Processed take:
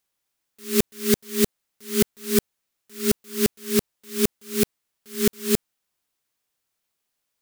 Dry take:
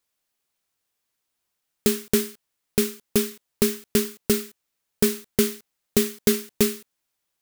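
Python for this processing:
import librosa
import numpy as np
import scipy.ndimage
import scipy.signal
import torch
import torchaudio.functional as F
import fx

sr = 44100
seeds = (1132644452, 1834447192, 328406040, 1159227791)

y = x[::-1].copy()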